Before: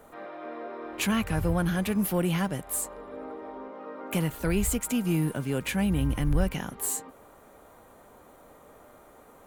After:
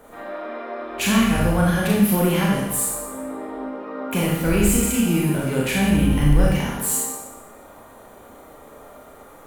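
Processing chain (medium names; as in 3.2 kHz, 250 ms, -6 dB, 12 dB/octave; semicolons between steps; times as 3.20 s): Schroeder reverb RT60 0.92 s, combs from 27 ms, DRR -4 dB; trim +3.5 dB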